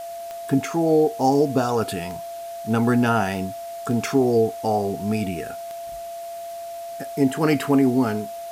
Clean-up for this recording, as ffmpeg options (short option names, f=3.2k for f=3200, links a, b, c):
-af "adeclick=t=4,bandreject=f=680:w=30,afwtdn=0.005"